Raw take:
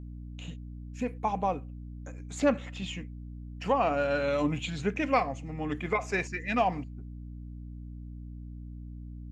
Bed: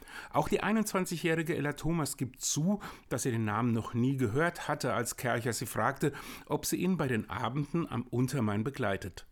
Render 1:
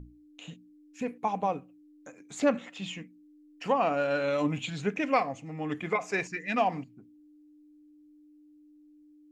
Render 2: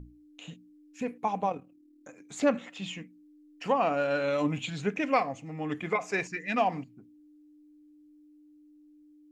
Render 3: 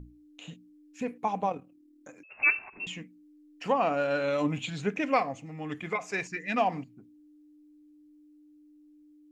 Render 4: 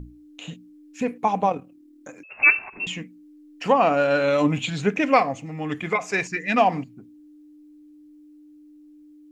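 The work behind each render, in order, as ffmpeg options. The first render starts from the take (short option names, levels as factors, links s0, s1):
-af "bandreject=f=60:t=h:w=6,bandreject=f=120:t=h:w=6,bandreject=f=180:t=h:w=6,bandreject=f=240:t=h:w=6"
-filter_complex "[0:a]asettb=1/sr,asplit=3[s0][s1][s2];[s0]atrim=end=1.494[s3];[s1]atrim=start=1.49:end=2.09,asetpts=PTS-STARTPTS,afade=t=in:d=0.004:c=qsin,afade=t=out:st=0.596:d=0.004:c=qsin,tremolo=f=38:d=0.571[s4];[s2]atrim=start=2.086[s5];[s3][s4]acrossfade=d=0.004:c1=hsin:c2=qsin[s6];[s6][s5]acrossfade=d=0.004:c1=qsin:c2=hsin"
-filter_complex "[0:a]asettb=1/sr,asplit=3[s0][s1][s2];[s0]atrim=end=2.234[s3];[s1]atrim=start=2.23:end=2.87,asetpts=PTS-STARTPTS,afade=t=in:d=0.004:c=qsin,afade=t=out:st=0.636:d=0.004:c=qsin,lowpass=f=2500:t=q:w=0.5098,lowpass=f=2500:t=q:w=0.6013,lowpass=f=2500:t=q:w=0.9,lowpass=f=2500:t=q:w=2.563,afreqshift=-2900[s4];[s2]atrim=start=2.866[s5];[s3][s4]acrossfade=d=0.004:c1=hsin:c2=qsin[s6];[s6][s5]acrossfade=d=0.004:c1=qsin:c2=hsin,asettb=1/sr,asplit=3[s7][s8][s9];[s7]atrim=end=5.464[s10];[s8]atrim=start=5.46:end=6.32,asetpts=PTS-STARTPTS,afade=t=in:d=0.004:c=qsin,afade=t=out:st=0.856:d=0.004:c=qsin,equalizer=f=470:w=0.39:g=-4[s11];[s9]atrim=start=6.316[s12];[s10][s11]acrossfade=d=0.004:c1=hsin:c2=qsin[s13];[s13][s12]acrossfade=d=0.004:c1=qsin:c2=hsin"
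-af "volume=2.51"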